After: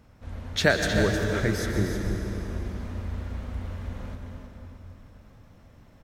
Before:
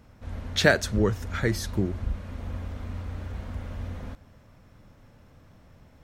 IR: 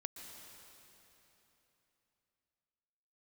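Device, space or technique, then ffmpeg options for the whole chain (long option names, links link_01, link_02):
cave: -filter_complex "[0:a]aecho=1:1:312:0.355[link_01];[1:a]atrim=start_sample=2205[link_02];[link_01][link_02]afir=irnorm=-1:irlink=0,asettb=1/sr,asplit=3[link_03][link_04][link_05];[link_03]atrim=end=1.134[link_06];[link_04]atrim=start=1.13:end=2.66,asetpts=PTS-STARTPTS,afade=type=in:duration=0.004:curve=qsin,afade=type=out:start_time=1.526:duration=0.004:curve=qsin,bandreject=frequency=4300:width=13[link_07];[link_05]atrim=start=2.656[link_08];[link_06][link_07]acrossfade=duration=0.004:curve1=hsin:curve2=qsin[link_09];[link_09][link_08]acrossfade=duration=0.004:curve1=qsin:curve2=hsin,volume=2.5dB"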